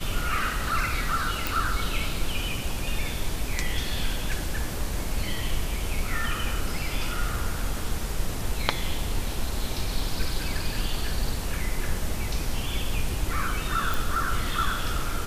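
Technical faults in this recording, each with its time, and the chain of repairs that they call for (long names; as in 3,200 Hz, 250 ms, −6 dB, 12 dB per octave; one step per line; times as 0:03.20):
0:01.47: click
0:13.94: click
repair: click removal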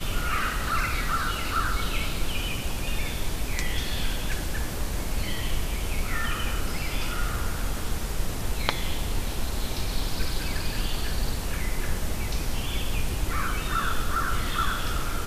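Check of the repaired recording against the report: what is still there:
none of them is left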